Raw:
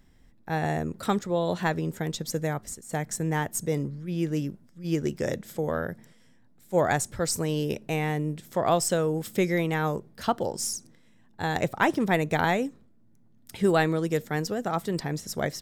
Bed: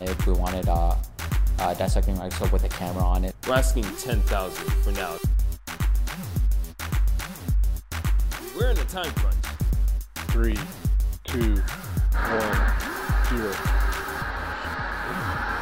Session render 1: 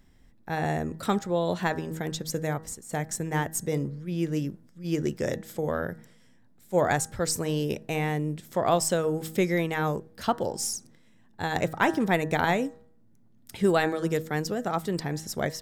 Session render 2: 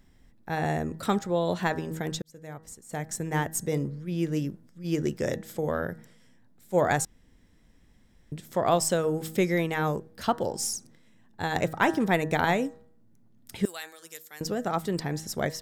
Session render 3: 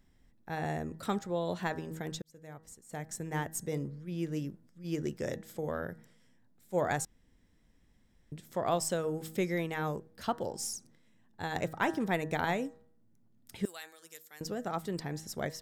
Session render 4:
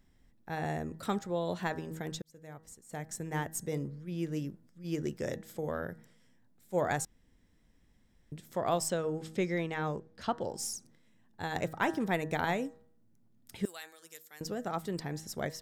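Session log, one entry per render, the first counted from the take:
de-hum 159.5 Hz, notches 12
2.22–3.34 fade in; 7.05–8.32 room tone; 13.65–14.41 differentiator
gain -7 dB
8.9–10.49 LPF 6500 Hz

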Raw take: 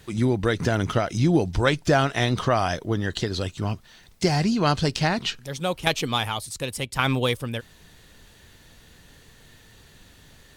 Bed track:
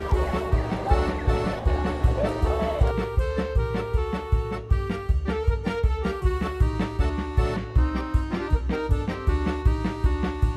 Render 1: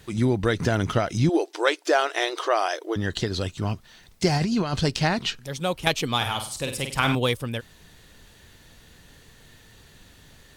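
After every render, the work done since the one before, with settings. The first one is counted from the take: 1.29–2.96 brick-wall FIR high-pass 300 Hz; 4.37–4.81 negative-ratio compressor -23 dBFS, ratio -0.5; 6.16–7.15 flutter echo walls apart 8.5 m, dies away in 0.44 s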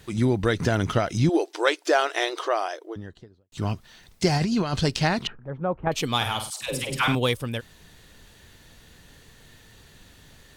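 2.15–3.52 studio fade out; 5.27–5.92 LPF 1400 Hz 24 dB/oct; 6.5–7.08 dispersion lows, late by 0.124 s, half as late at 540 Hz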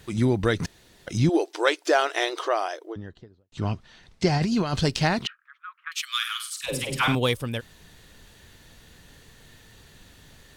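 0.66–1.07 room tone; 2.92–4.43 air absorption 78 m; 5.26–6.64 steep high-pass 1200 Hz 72 dB/oct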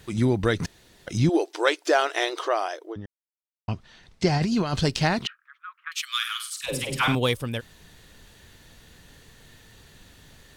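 3.06–3.68 mute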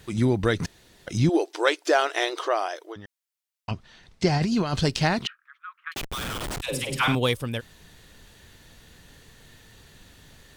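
2.76–3.71 tilt shelf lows -7.5 dB, about 690 Hz; 5.94–6.62 Schmitt trigger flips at -31 dBFS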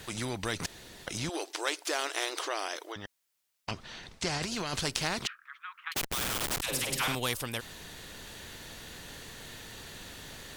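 vocal rider 2 s; spectral compressor 2:1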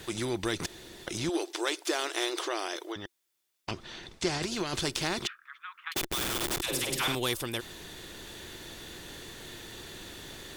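soft clip -13 dBFS, distortion -29 dB; small resonant body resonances 350/3500 Hz, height 10 dB, ringing for 45 ms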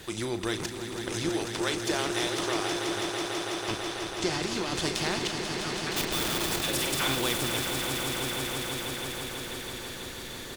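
doubler 37 ms -11 dB; swelling echo 0.164 s, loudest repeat 5, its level -8.5 dB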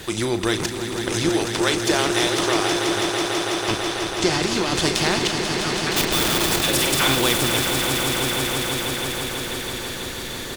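gain +9 dB

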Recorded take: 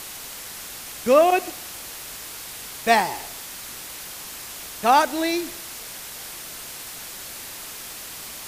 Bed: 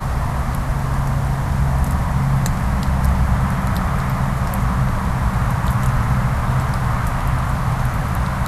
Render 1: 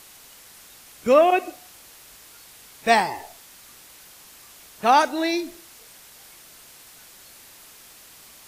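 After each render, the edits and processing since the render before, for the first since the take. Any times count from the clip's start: noise print and reduce 11 dB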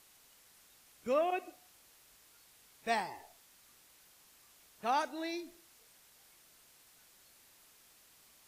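gain -15.5 dB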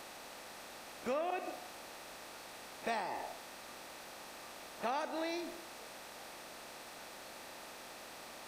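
per-bin compression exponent 0.6; compressor 4:1, threshold -34 dBFS, peak gain reduction 8.5 dB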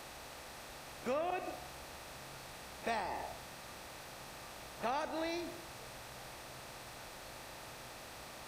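add bed -41.5 dB

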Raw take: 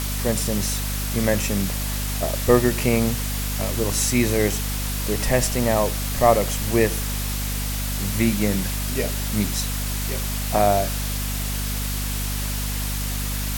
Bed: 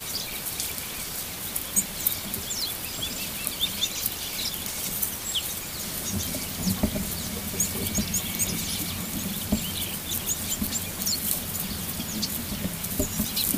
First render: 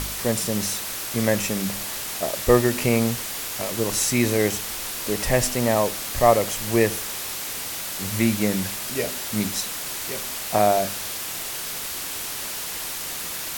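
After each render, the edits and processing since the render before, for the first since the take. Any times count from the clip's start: de-hum 50 Hz, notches 5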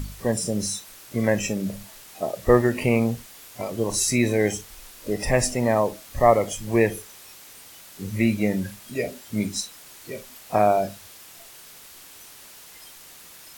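noise print and reduce 15 dB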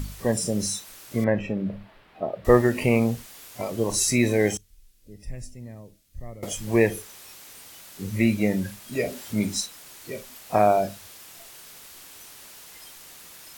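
1.24–2.45 air absorption 450 m; 4.57–6.43 passive tone stack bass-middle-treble 10-0-1; 8.92–9.66 G.711 law mismatch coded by mu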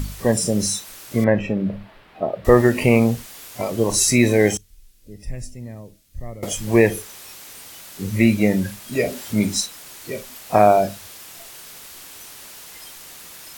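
gain +5.5 dB; limiter -1 dBFS, peak gain reduction 3 dB

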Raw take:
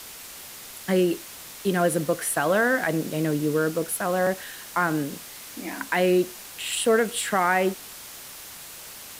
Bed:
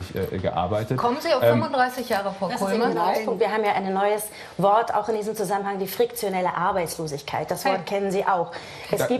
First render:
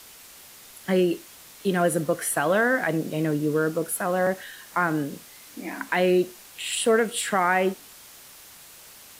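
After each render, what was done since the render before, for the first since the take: noise print and reduce 6 dB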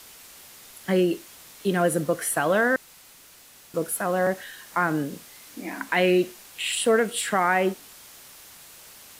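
2.76–3.74 room tone; 5.96–6.72 dynamic EQ 2400 Hz, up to +6 dB, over -44 dBFS, Q 1.5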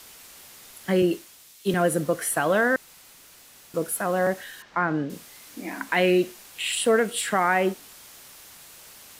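1.02–1.74 three-band expander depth 70%; 4.62–5.1 air absorption 180 m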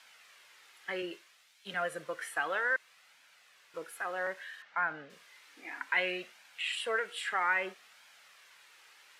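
flange 0.62 Hz, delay 1.2 ms, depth 1.3 ms, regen -37%; band-pass 1900 Hz, Q 1.1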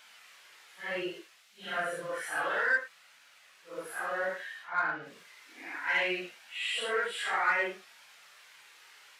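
phase scrambler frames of 0.2 s; in parallel at -8 dB: soft clip -30 dBFS, distortion -11 dB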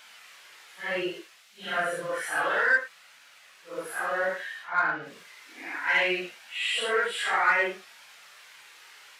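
gain +5 dB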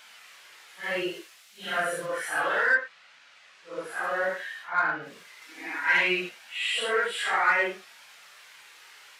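0.83–2.06 high shelf 6200 Hz +6.5 dB; 2.74–4.02 LPF 4100 Hz -> 8200 Hz; 5.41–6.29 comb 6.3 ms, depth 69%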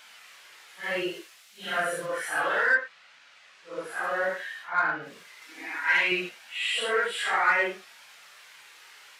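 5.65–6.12 low shelf 430 Hz -8 dB

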